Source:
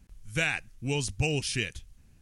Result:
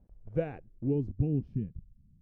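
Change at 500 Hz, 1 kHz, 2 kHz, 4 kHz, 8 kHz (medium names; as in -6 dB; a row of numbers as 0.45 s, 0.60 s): 0.0 dB, -9.5 dB, under -20 dB, under -35 dB, under -40 dB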